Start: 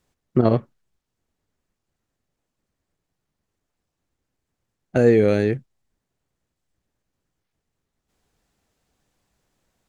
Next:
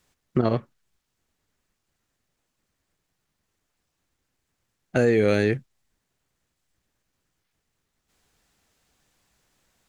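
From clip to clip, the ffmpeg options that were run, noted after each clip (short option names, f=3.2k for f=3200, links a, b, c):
-filter_complex "[0:a]acrossover=split=1100[a][b];[b]acontrast=50[c];[a][c]amix=inputs=2:normalize=0,alimiter=limit=-9.5dB:level=0:latency=1:release=464"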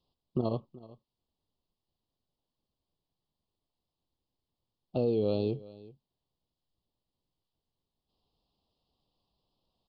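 -af "asuperstop=centerf=1800:order=8:qfactor=1,aecho=1:1:377:0.1,aresample=11025,aresample=44100,volume=-8.5dB"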